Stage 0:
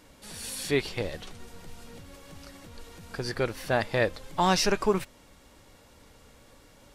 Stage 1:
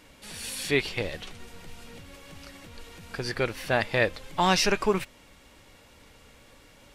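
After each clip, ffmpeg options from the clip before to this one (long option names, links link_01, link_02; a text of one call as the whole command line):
ffmpeg -i in.wav -af "equalizer=frequency=2500:width_type=o:width=1.1:gain=6" out.wav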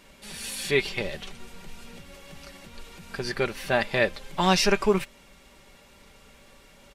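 ffmpeg -i in.wav -af "aecho=1:1:5.1:0.49" out.wav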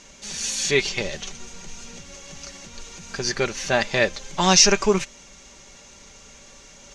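ffmpeg -i in.wav -af "lowpass=frequency=6400:width_type=q:width=7.4,areverse,acompressor=mode=upward:threshold=-45dB:ratio=2.5,areverse,volume=2.5dB" out.wav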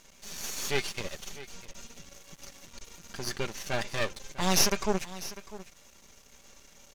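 ffmpeg -i in.wav -af "aeval=exprs='max(val(0),0)':channel_layout=same,aecho=1:1:649:0.158,volume=-5.5dB" out.wav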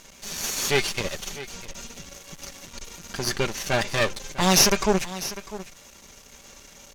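ffmpeg -i in.wav -filter_complex "[0:a]asplit=2[link_01][link_02];[link_02]asoftclip=type=hard:threshold=-21.5dB,volume=-7.5dB[link_03];[link_01][link_03]amix=inputs=2:normalize=0,volume=5.5dB" -ar 48000 -c:a libopus -b:a 256k out.opus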